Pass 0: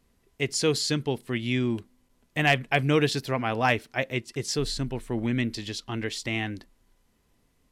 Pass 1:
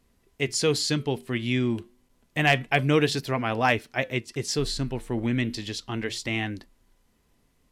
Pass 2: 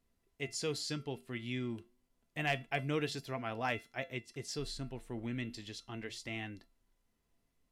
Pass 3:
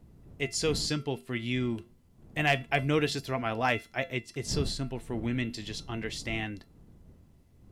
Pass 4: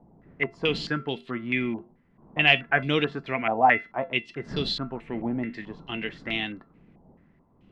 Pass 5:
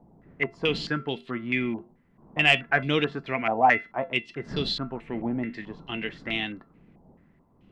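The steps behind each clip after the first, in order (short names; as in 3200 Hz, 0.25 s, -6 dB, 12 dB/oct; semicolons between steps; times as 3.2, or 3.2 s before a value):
flange 0.3 Hz, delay 2.8 ms, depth 4.8 ms, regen -88%; gain +5.5 dB
resonator 680 Hz, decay 0.25 s, harmonics all, mix 70%; gain -3.5 dB
wind noise 160 Hz -53 dBFS; gain +8 dB
resonant low shelf 130 Hz -8 dB, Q 1.5; stepped low-pass 4.6 Hz 820–3600 Hz; gain +1 dB
soft clip -4 dBFS, distortion -26 dB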